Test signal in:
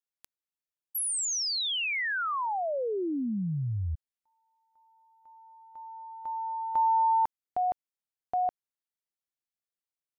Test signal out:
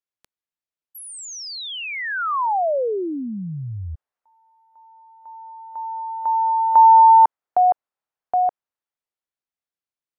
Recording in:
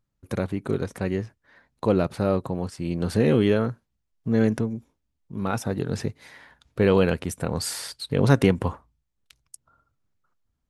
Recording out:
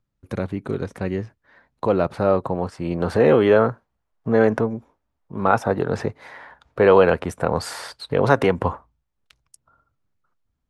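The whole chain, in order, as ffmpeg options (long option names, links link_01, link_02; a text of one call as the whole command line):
ffmpeg -i in.wav -filter_complex "[0:a]highshelf=frequency=6600:gain=-10.5,acrossover=split=500|1500[link_01][link_02][link_03];[link_01]alimiter=limit=-16.5dB:level=0:latency=1[link_04];[link_02]dynaudnorm=framelen=570:gausssize=9:maxgain=15.5dB[link_05];[link_04][link_05][link_03]amix=inputs=3:normalize=0,volume=1dB" out.wav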